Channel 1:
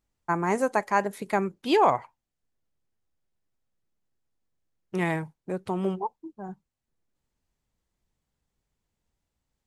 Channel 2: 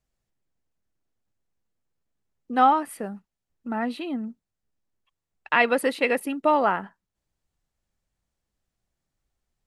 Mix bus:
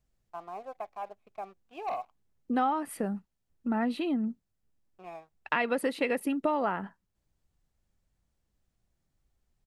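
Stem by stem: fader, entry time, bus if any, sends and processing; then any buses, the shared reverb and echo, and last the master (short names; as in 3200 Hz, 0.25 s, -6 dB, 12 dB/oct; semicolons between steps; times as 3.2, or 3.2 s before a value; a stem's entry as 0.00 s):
-12.5 dB, 0.05 s, no send, vowel filter a; tone controls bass +3 dB, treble -9 dB; sample leveller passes 2; auto duck -24 dB, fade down 0.30 s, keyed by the second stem
-1.0 dB, 0.00 s, no send, low shelf 350 Hz +6.5 dB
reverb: off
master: compressor 4:1, threshold -26 dBFS, peak gain reduction 11 dB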